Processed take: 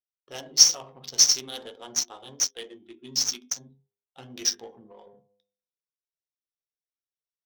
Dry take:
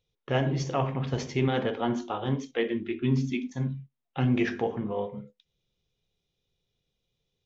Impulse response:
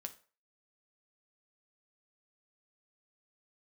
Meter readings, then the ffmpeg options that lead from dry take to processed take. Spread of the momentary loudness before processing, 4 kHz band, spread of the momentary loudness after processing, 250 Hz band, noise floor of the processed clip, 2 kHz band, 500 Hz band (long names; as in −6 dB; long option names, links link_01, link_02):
7 LU, +17.5 dB, 22 LU, −19.0 dB, below −85 dBFS, −8.0 dB, −14.0 dB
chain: -af "aexciter=amount=8.8:drive=3.9:freq=3400,afftdn=noise_reduction=13:noise_floor=-43,lowpass=frequency=5700:width_type=q:width=7.7,flanger=delay=9.3:depth=3.8:regen=-46:speed=0.44:shape=sinusoidal,bass=frequency=250:gain=-14,treble=frequency=4000:gain=10,bandreject=frequency=101:width_type=h:width=4,bandreject=frequency=202:width_type=h:width=4,bandreject=frequency=303:width_type=h:width=4,bandreject=frequency=404:width_type=h:width=4,bandreject=frequency=505:width_type=h:width=4,bandreject=frequency=606:width_type=h:width=4,bandreject=frequency=707:width_type=h:width=4,bandreject=frequency=808:width_type=h:width=4,bandreject=frequency=909:width_type=h:width=4,bandreject=frequency=1010:width_type=h:width=4,bandreject=frequency=1111:width_type=h:width=4,bandreject=frequency=1212:width_type=h:width=4,bandreject=frequency=1313:width_type=h:width=4,bandreject=frequency=1414:width_type=h:width=4,bandreject=frequency=1515:width_type=h:width=4,bandreject=frequency=1616:width_type=h:width=4,bandreject=frequency=1717:width_type=h:width=4,bandreject=frequency=1818:width_type=h:width=4,bandreject=frequency=1919:width_type=h:width=4,bandreject=frequency=2020:width_type=h:width=4,bandreject=frequency=2121:width_type=h:width=4,bandreject=frequency=2222:width_type=h:width=4,bandreject=frequency=2323:width_type=h:width=4,bandreject=frequency=2424:width_type=h:width=4,bandreject=frequency=2525:width_type=h:width=4,bandreject=frequency=2626:width_type=h:width=4,bandreject=frequency=2727:width_type=h:width=4,bandreject=frequency=2828:width_type=h:width=4,bandreject=frequency=2929:width_type=h:width=4,bandreject=frequency=3030:width_type=h:width=4,bandreject=frequency=3131:width_type=h:width=4,bandreject=frequency=3232:width_type=h:width=4,bandreject=frequency=3333:width_type=h:width=4,bandreject=frequency=3434:width_type=h:width=4,bandreject=frequency=3535:width_type=h:width=4,bandreject=frequency=3636:width_type=h:width=4,bandreject=frequency=3737:width_type=h:width=4,adynamicsmooth=sensitivity=2.5:basefreq=960,volume=-8dB"